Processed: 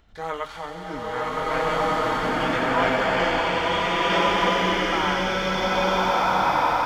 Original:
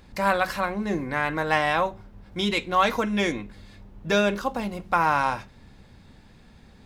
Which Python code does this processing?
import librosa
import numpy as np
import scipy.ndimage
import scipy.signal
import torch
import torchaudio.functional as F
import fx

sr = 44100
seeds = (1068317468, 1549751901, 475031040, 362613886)

p1 = fx.pitch_glide(x, sr, semitones=-3.5, runs='ending unshifted')
p2 = fx.graphic_eq_15(p1, sr, hz=(160, 400, 10000), db=(-10, -4, -10))
p3 = p2 + fx.echo_wet_highpass(p2, sr, ms=90, feedback_pct=85, hz=2800.0, wet_db=-5.0, dry=0)
p4 = fx.rev_bloom(p3, sr, seeds[0], attack_ms=1670, drr_db=-10.5)
y = p4 * librosa.db_to_amplitude(-4.5)